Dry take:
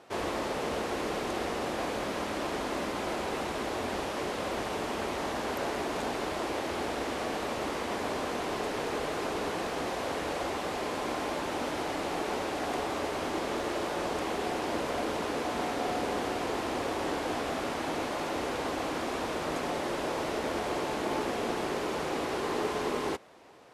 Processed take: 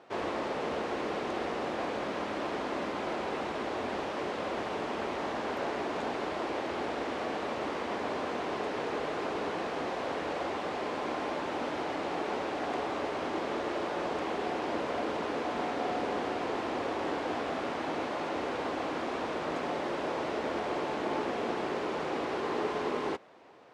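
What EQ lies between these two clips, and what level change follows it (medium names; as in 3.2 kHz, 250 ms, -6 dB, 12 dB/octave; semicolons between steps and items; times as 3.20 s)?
high-pass 150 Hz 6 dB/octave; distance through air 60 m; treble shelf 5.1 kHz -7.5 dB; 0.0 dB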